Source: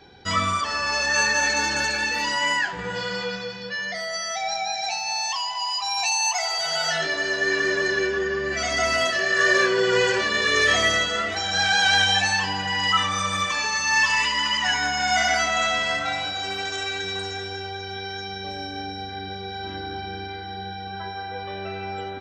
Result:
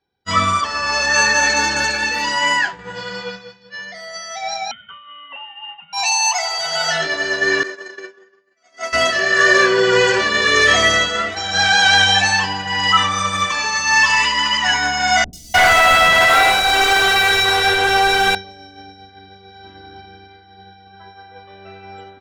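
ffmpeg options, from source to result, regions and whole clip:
-filter_complex "[0:a]asettb=1/sr,asplit=3[a][b][c];[a]atrim=end=4.714[d];[b]atrim=start=4.71:end=5.93,asetpts=PTS-STARTPTS,afade=t=in:d=0.004:c=qsin,afade=t=out:st=1.216:d=0.004:c=qsin,bandreject=f=800:w=5.8,lowpass=f=3.2k:t=q:w=0.5098,lowpass=f=3.2k:t=q:w=0.6013,lowpass=f=3.2k:t=q:w=0.9,lowpass=f=3.2k:t=q:w=2.563,afreqshift=-3800[e];[c]atrim=start=5.926[f];[d][e]acrossfade=d=0.004:c1=hsin:c2=qsin[g];[g][f]acrossfade=d=0.004:c1=qsin:c2=hsin,asettb=1/sr,asplit=3[h][i][j];[h]atrim=end=7.634[k];[i]atrim=start=7.63:end=8.93,asetpts=PTS-STARTPTS,afade=t=in:d=0.004:c=qsin,afade=t=out:st=1.296:d=0.004:c=qsin,agate=range=-33dB:threshold=-18dB:ratio=3:release=100:detection=peak,highpass=330,equalizer=f=3.1k:t=o:w=1.2:g=-3[l];[j]atrim=start=8.926[m];[k][l]acrossfade=d=0.004:c1=hsin:c2=qsin[n];[n][m]acrossfade=d=0.004:c1=qsin:c2=hsin,asettb=1/sr,asplit=3[o][p][q];[o]atrim=end=15.244[r];[p]atrim=start=15.24:end=18.35,asetpts=PTS-STARTPTS,afade=t=in:d=0.004:c=qsin,afade=t=out:st=3.106:d=0.004:c=qsin,asplit=2[s][t];[t]highpass=f=720:p=1,volume=30dB,asoftclip=type=tanh:threshold=-10.5dB[u];[s][u]amix=inputs=2:normalize=0,lowpass=f=2.7k:p=1,volume=-6dB,acrossover=split=270|5200[v][w][x];[x]adelay=90[y];[w]adelay=300[z];[v][z][y]amix=inputs=3:normalize=0,atrim=end_sample=137151[aa];[q]atrim=start=18.346[ab];[r][aa]acrossfade=d=0.004:c1=hsin:c2=qsin[ac];[ac][ab]acrossfade=d=0.004:c1=qsin:c2=hsin,agate=range=-33dB:threshold=-22dB:ratio=3:detection=peak,equalizer=f=1.1k:t=o:w=0.77:g=2,volume=6dB"

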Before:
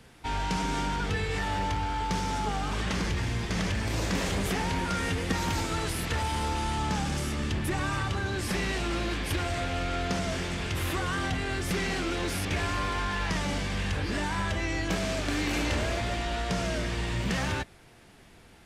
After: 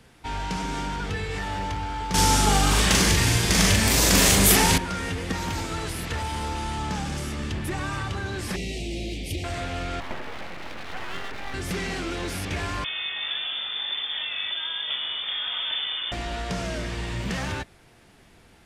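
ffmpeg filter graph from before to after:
-filter_complex "[0:a]asettb=1/sr,asplit=3[a][b][c];[a]atrim=end=2.144[d];[b]atrim=start=2.14:end=4.78,asetpts=PTS-STARTPTS,afade=t=in:d=0.004:c=qsin,afade=t=out:st=2.636:d=0.004:c=qsin,aemphasis=mode=production:type=75fm,acontrast=88,asplit=2[e][f];[f]adelay=41,volume=-2.5dB[g];[e][g]amix=inputs=2:normalize=0,atrim=end_sample=116424[h];[c]atrim=start=4.776[i];[d][h]acrossfade=d=0.004:c1=hsin:c2=qsin[j];[j][i]acrossfade=d=0.004:c1=qsin:c2=hsin,asettb=1/sr,asplit=3[k][l][m];[k]atrim=end=8.564[n];[l]atrim=start=8.56:end=9.44,asetpts=PTS-STARTPTS,afade=t=in:d=0.004:c=qsin,afade=t=out:st=0.876:d=0.004:c=qsin,asuperstop=centerf=1300:order=8:qfactor=0.98,equalizer=f=970:w=1.6:g=-12.5[o];[m]atrim=start=9.436[p];[n][o]acrossfade=d=0.004:c1=hsin:c2=qsin[q];[q][p]acrossfade=d=0.004:c1=qsin:c2=hsin,asettb=1/sr,asplit=3[r][s][t];[r]atrim=end=10.004[u];[s]atrim=start=10:end=11.54,asetpts=PTS-STARTPTS,afade=t=in:d=0.004:c=qsin,afade=t=out:st=1.536:d=0.004:c=qsin,highpass=f=130:w=0.5412,highpass=f=130:w=1.3066,equalizer=f=280:t=q:w=4:g=-8,equalizer=f=420:t=q:w=4:g=8,equalizer=f=760:t=q:w=4:g=-9,equalizer=f=1.7k:t=q:w=4:g=3,lowpass=f=2.4k:w=0.5412,lowpass=f=2.4k:w=1.3066,aeval=exprs='abs(val(0))':c=same[v];[t]atrim=start=11.536[w];[u][v]acrossfade=d=0.004:c1=hsin:c2=qsin[x];[x][w]acrossfade=d=0.004:c1=qsin:c2=hsin,asettb=1/sr,asplit=3[y][z][aa];[y]atrim=end=12.844[ab];[z]atrim=start=12.84:end=16.12,asetpts=PTS-STARTPTS,afade=t=in:d=0.004:c=qsin,afade=t=out:st=3.276:d=0.004:c=qsin,highshelf=f=2.7k:g=-11.5,acrusher=bits=7:dc=4:mix=0:aa=0.000001,lowpass=f=3.1k:t=q:w=0.5098,lowpass=f=3.1k:t=q:w=0.6013,lowpass=f=3.1k:t=q:w=0.9,lowpass=f=3.1k:t=q:w=2.563,afreqshift=-3600[ac];[aa]atrim=start=16.116[ad];[ab][ac]acrossfade=d=0.004:c1=hsin:c2=qsin[ae];[ae][ad]acrossfade=d=0.004:c1=qsin:c2=hsin"

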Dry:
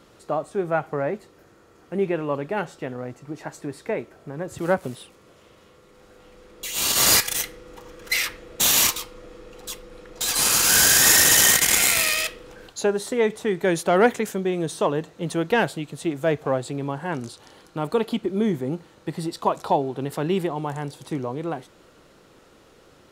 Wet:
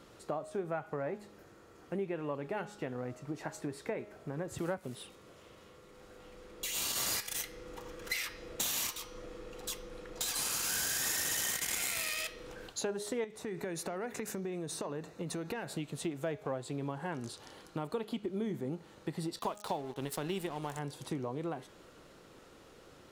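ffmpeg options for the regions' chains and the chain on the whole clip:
-filter_complex "[0:a]asettb=1/sr,asplit=3[a][b][c];[a]atrim=end=13.244[d];[b]atrim=start=13.24:end=15.77,asetpts=PTS-STARTPTS,afade=t=in:d=0.004:c=qsin,afade=t=out:st=2.526:d=0.004:c=qsin,acompressor=threshold=-29dB:ratio=6:attack=3.2:release=140:knee=1:detection=peak,bandreject=f=3.2k:w=5.1[e];[c]atrim=start=15.766[f];[d][e]acrossfade=d=0.004:c1=hsin:c2=qsin[g];[g][f]acrossfade=d=0.004:c1=qsin:c2=hsin,asettb=1/sr,asplit=3[h][i][j];[h]atrim=end=19.394[k];[i]atrim=start=19.39:end=20.79,asetpts=PTS-STARTPTS,afade=t=in:d=0.004:c=qsin,afade=t=out:st=1.396:d=0.004:c=qsin,highshelf=f=2.8k:g=11,aeval=exprs='sgn(val(0))*max(abs(val(0))-0.0133,0)':c=same[l];[j]atrim=start=20.786[m];[k][l]acrossfade=d=0.004:c1=hsin:c2=qsin[n];[n][m]acrossfade=d=0.004:c1=qsin:c2=hsin,bandreject=f=207.5:t=h:w=4,bandreject=f=415:t=h:w=4,bandreject=f=622.5:t=h:w=4,bandreject=f=830:t=h:w=4,bandreject=f=1.0375k:t=h:w=4,bandreject=f=1.245k:t=h:w=4,bandreject=f=1.4525k:t=h:w=4,bandreject=f=1.66k:t=h:w=4,bandreject=f=1.8675k:t=h:w=4,bandreject=f=2.075k:t=h:w=4,bandreject=f=2.2825k:t=h:w=4,bandreject=f=2.49k:t=h:w=4,bandreject=f=2.6975k:t=h:w=4,bandreject=f=2.905k:t=h:w=4,bandreject=f=3.1125k:t=h:w=4,bandreject=f=3.32k:t=h:w=4,bandreject=f=3.5275k:t=h:w=4,bandreject=f=3.735k:t=h:w=4,bandreject=f=3.9425k:t=h:w=4,bandreject=f=4.15k:t=h:w=4,bandreject=f=4.3575k:t=h:w=4,bandreject=f=4.565k:t=h:w=4,bandreject=f=4.7725k:t=h:w=4,bandreject=f=4.98k:t=h:w=4,bandreject=f=5.1875k:t=h:w=4,bandreject=f=5.395k:t=h:w=4,bandreject=f=5.6025k:t=h:w=4,bandreject=f=5.81k:t=h:w=4,bandreject=f=6.0175k:t=h:w=4,bandreject=f=6.225k:t=h:w=4,bandreject=f=6.4325k:t=h:w=4,acompressor=threshold=-31dB:ratio=4,volume=-3.5dB"

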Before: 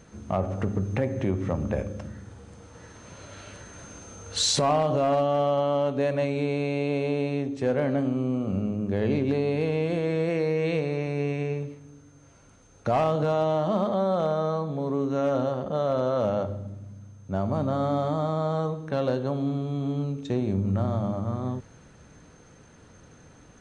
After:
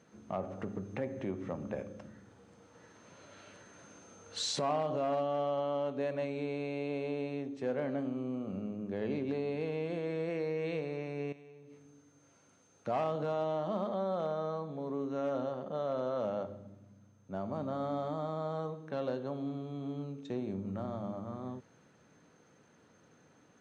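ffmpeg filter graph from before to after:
-filter_complex "[0:a]asettb=1/sr,asplit=3[a][b][c];[a]atrim=end=11.324[d];[b]atrim=start=11.32:end=12.87,asetpts=PTS-STARTPTS,afade=t=in:d=0.004:c=qsin,afade=t=out:st=1.546:d=0.004:c=qsin,highshelf=f=4.5k:g=6.5,acompressor=threshold=-39dB:ratio=16:attack=3.2:release=140:knee=1:detection=peak,asplit=2[e][f];[f]adelay=39,volume=-11dB[g];[e][g]amix=inputs=2:normalize=0,atrim=end_sample=68355[h];[c]atrim=start=12.866[i];[d][h]acrossfade=d=0.004:c1=hsin:c2=qsin[j];[j][i]acrossfade=d=0.004:c1=qsin:c2=hsin,highpass=170,highshelf=f=8.9k:g=-11.5,volume=-9dB"

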